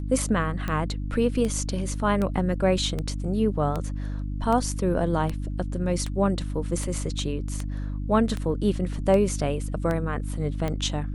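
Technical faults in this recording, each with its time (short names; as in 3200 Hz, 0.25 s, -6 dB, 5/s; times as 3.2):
hum 50 Hz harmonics 6 -30 dBFS
tick 78 rpm -16 dBFS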